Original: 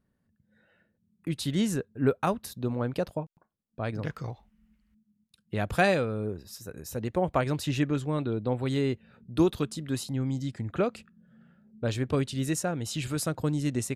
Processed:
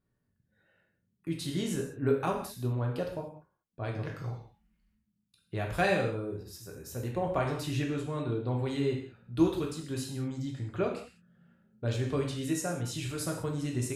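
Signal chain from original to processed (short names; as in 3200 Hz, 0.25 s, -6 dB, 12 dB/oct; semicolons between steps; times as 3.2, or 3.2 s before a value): non-linear reverb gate 0.22 s falling, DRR -0.5 dB; gain -6.5 dB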